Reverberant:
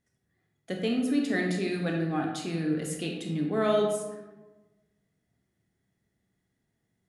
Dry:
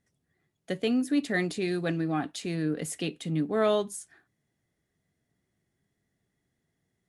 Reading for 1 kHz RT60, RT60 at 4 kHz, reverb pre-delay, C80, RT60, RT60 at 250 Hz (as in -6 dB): 1.1 s, 0.65 s, 23 ms, 6.0 dB, 1.2 s, 1.5 s